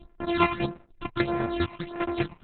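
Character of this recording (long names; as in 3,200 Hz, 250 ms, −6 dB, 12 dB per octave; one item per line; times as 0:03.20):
a buzz of ramps at a fixed pitch in blocks of 128 samples
phaser sweep stages 8, 1.6 Hz, lowest notch 460–4,700 Hz
chopped level 5 Hz, depth 65%, duty 30%
Opus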